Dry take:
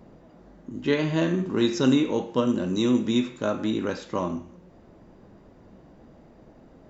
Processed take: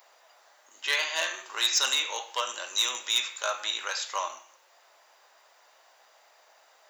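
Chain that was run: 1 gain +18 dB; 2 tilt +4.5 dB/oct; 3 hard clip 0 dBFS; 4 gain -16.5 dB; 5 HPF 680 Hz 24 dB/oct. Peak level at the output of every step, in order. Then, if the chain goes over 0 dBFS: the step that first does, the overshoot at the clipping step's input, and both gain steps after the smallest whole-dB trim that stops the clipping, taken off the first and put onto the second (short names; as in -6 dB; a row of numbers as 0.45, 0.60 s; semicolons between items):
+9.5, +9.0, 0.0, -16.5, -11.5 dBFS; step 1, 9.0 dB; step 1 +9 dB, step 4 -7.5 dB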